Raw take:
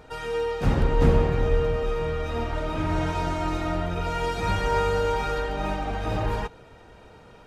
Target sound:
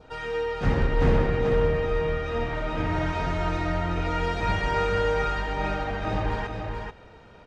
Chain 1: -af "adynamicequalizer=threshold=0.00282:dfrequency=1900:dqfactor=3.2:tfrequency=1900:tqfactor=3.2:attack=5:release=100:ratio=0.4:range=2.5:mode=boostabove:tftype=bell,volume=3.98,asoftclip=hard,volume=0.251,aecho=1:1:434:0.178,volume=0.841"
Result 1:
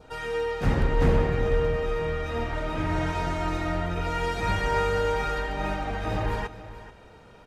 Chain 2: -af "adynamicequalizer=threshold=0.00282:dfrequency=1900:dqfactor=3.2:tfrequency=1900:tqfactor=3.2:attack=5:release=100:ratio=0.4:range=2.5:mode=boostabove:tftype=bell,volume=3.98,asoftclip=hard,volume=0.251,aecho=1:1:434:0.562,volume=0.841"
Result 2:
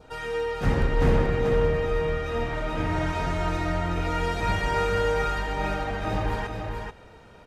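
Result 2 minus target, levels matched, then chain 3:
8 kHz band +5.0 dB
-af "adynamicequalizer=threshold=0.00282:dfrequency=1900:dqfactor=3.2:tfrequency=1900:tqfactor=3.2:attack=5:release=100:ratio=0.4:range=2.5:mode=boostabove:tftype=bell,lowpass=5700,volume=3.98,asoftclip=hard,volume=0.251,aecho=1:1:434:0.562,volume=0.841"

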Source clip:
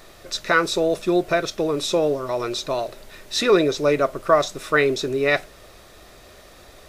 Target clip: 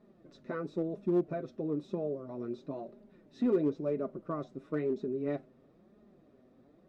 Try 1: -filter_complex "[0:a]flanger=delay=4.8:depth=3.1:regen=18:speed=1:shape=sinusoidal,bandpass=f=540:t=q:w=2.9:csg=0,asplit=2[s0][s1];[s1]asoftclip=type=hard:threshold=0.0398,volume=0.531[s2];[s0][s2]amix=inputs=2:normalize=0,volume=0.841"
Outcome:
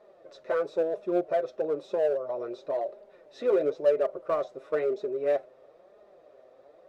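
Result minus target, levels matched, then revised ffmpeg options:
250 Hz band -10.0 dB
-filter_complex "[0:a]flanger=delay=4.8:depth=3.1:regen=18:speed=1:shape=sinusoidal,bandpass=f=230:t=q:w=2.9:csg=0,asplit=2[s0][s1];[s1]asoftclip=type=hard:threshold=0.0398,volume=0.531[s2];[s0][s2]amix=inputs=2:normalize=0,volume=0.841"

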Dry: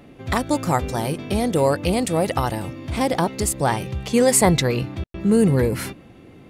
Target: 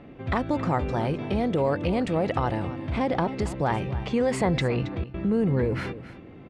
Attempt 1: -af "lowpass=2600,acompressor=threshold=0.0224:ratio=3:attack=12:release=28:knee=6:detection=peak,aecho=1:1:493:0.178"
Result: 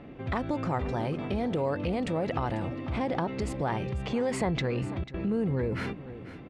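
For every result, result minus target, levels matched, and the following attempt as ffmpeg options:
echo 220 ms late; compression: peak gain reduction +5 dB
-af "lowpass=2600,acompressor=threshold=0.0224:ratio=3:attack=12:release=28:knee=6:detection=peak,aecho=1:1:273:0.178"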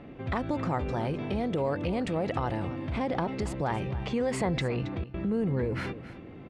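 compression: peak gain reduction +5 dB
-af "lowpass=2600,acompressor=threshold=0.0531:ratio=3:attack=12:release=28:knee=6:detection=peak,aecho=1:1:273:0.178"

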